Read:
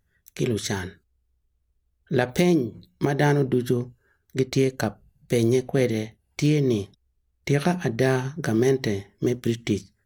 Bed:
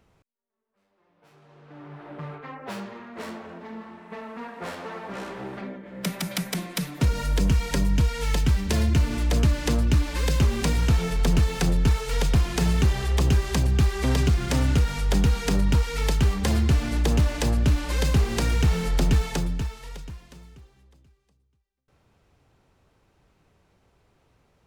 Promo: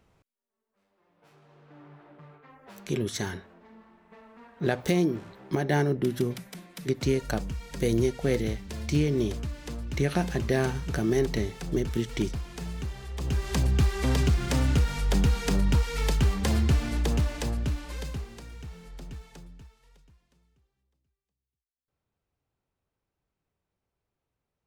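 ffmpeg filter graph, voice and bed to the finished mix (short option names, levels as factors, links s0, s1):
-filter_complex "[0:a]adelay=2500,volume=0.596[s0];[1:a]volume=2.99,afade=t=out:st=1.27:d=0.92:silence=0.251189,afade=t=in:st=13.16:d=0.45:silence=0.266073,afade=t=out:st=16.71:d=1.71:silence=0.11885[s1];[s0][s1]amix=inputs=2:normalize=0"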